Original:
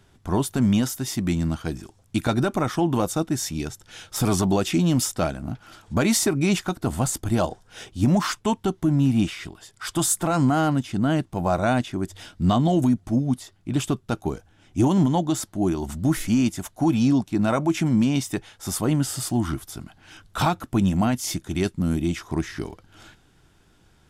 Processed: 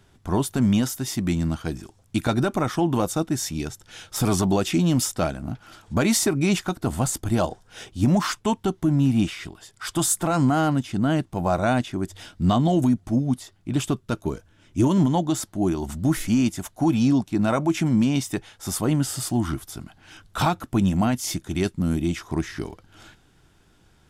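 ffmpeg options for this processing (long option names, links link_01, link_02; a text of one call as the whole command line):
ffmpeg -i in.wav -filter_complex "[0:a]asettb=1/sr,asplit=3[link_01][link_02][link_03];[link_01]atrim=end=14.004[link_04];[link_02]atrim=start=14:end=15,asetpts=PTS-STARTPTS,afade=type=in:duration=0.004:curve=qsin,afade=type=out:start_time=0.996:duration=0.004:curve=qsin,asuperstop=centerf=770:order=4:qfactor=5.2[link_05];[link_03]atrim=start=14.996[link_06];[link_04][link_05]acrossfade=duration=0.004:curve1=hsin:curve2=qsin[link_07];[link_07][link_06]acrossfade=duration=0.004:curve1=qsin:curve2=hsin" out.wav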